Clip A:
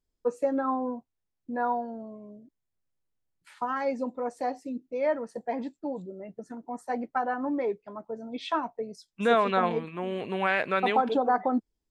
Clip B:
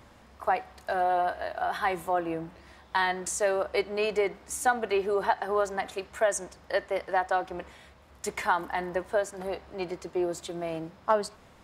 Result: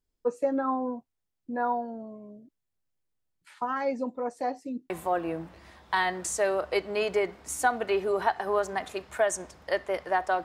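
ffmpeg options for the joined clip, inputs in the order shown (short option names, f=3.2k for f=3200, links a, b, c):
-filter_complex "[0:a]apad=whole_dur=10.44,atrim=end=10.44,atrim=end=4.902[a];[1:a]atrim=start=1.918:end=7.46[b];[a][b]acrossfade=d=0.004:c1=hsin:c2=hsin"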